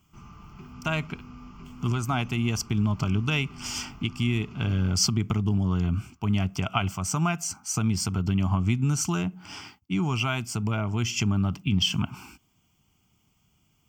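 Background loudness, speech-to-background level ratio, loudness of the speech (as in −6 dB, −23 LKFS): −46.0 LKFS, 19.0 dB, −27.0 LKFS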